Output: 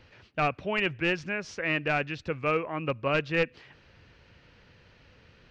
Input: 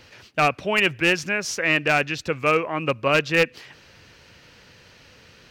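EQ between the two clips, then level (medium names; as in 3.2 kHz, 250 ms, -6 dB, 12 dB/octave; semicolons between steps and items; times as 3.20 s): tape spacing loss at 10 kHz 34 dB; bass shelf 78 Hz +8.5 dB; treble shelf 2.3 kHz +9.5 dB; -5.5 dB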